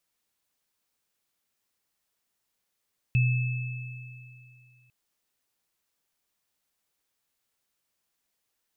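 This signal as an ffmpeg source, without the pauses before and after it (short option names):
-f lavfi -i "aevalsrc='0.119*pow(10,-3*t/2.45)*sin(2*PI*124*t)+0.0376*pow(10,-3*t/2.94)*sin(2*PI*2610*t)':d=1.75:s=44100"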